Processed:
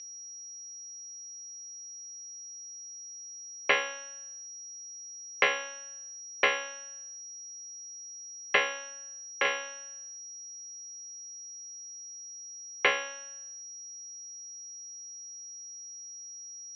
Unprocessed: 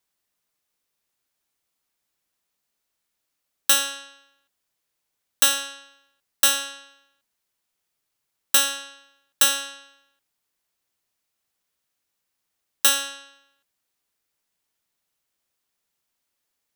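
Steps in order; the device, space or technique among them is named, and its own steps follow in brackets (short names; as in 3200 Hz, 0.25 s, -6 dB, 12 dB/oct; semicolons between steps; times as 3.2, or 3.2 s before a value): 8.9–9.45 tone controls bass +6 dB, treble -7 dB; toy sound module (decimation joined by straight lines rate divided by 4×; pulse-width modulation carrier 5700 Hz; speaker cabinet 550–3900 Hz, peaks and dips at 600 Hz +6 dB, 920 Hz -6 dB, 1400 Hz -6 dB, 2200 Hz +5 dB, 3500 Hz -5 dB)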